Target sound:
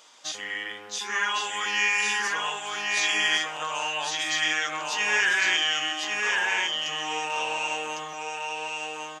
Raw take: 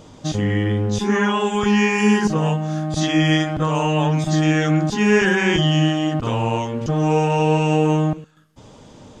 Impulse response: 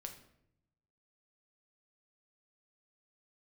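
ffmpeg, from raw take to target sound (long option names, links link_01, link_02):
-filter_complex "[0:a]highpass=1400,asplit=2[link_01][link_02];[link_02]aecho=0:1:1104:0.708[link_03];[link_01][link_03]amix=inputs=2:normalize=0"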